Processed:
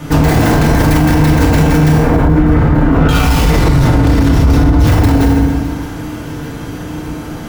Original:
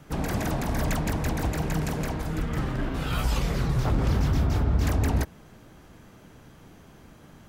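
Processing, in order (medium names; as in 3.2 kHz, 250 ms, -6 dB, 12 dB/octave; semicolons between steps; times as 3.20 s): tracing distortion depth 0.18 ms; 1.93–3.09 s: low-pass 1.5 kHz 12 dB/octave; overload inside the chain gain 25 dB; thinning echo 613 ms, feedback 65%, level -24 dB; FDN reverb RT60 1.1 s, low-frequency decay 1.4×, high-frequency decay 0.7×, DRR -4 dB; loudness maximiser +20 dB; trim -1 dB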